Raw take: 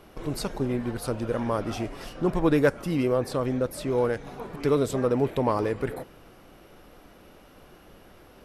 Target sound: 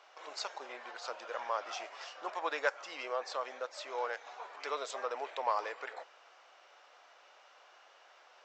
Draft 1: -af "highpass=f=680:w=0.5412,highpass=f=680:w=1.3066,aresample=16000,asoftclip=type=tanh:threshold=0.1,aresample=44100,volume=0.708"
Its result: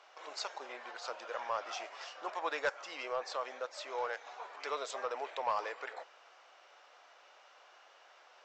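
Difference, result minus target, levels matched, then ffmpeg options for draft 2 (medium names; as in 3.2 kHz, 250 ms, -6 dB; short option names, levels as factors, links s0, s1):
saturation: distortion +14 dB
-af "highpass=f=680:w=0.5412,highpass=f=680:w=1.3066,aresample=16000,asoftclip=type=tanh:threshold=0.299,aresample=44100,volume=0.708"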